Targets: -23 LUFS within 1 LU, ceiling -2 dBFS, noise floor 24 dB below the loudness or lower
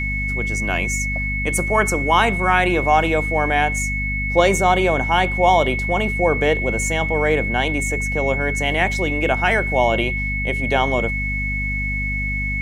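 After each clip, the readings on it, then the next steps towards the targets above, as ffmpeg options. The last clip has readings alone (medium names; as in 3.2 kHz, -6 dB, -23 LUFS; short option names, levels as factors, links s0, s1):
hum 50 Hz; highest harmonic 250 Hz; hum level -23 dBFS; steady tone 2.2 kHz; tone level -23 dBFS; loudness -19.0 LUFS; peak level -2.0 dBFS; loudness target -23.0 LUFS
-> -af "bandreject=f=50:t=h:w=6,bandreject=f=100:t=h:w=6,bandreject=f=150:t=h:w=6,bandreject=f=200:t=h:w=6,bandreject=f=250:t=h:w=6"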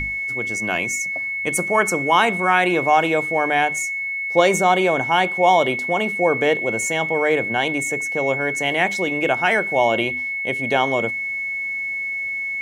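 hum not found; steady tone 2.2 kHz; tone level -23 dBFS
-> -af "bandreject=f=2200:w=30"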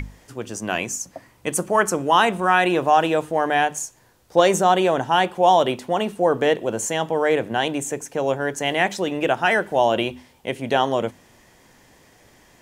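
steady tone not found; loudness -20.5 LUFS; peak level -3.5 dBFS; loudness target -23.0 LUFS
-> -af "volume=0.75"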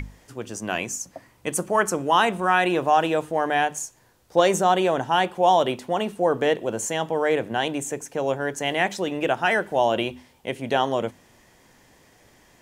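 loudness -23.0 LUFS; peak level -6.0 dBFS; noise floor -57 dBFS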